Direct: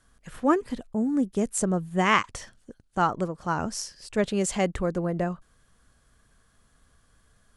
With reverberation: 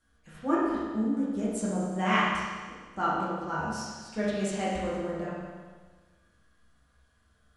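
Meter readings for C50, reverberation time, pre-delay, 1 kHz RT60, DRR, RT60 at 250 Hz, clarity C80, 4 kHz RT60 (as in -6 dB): -1.5 dB, 1.5 s, 7 ms, 1.5 s, -8.5 dB, 1.5 s, 1.5 dB, 1.5 s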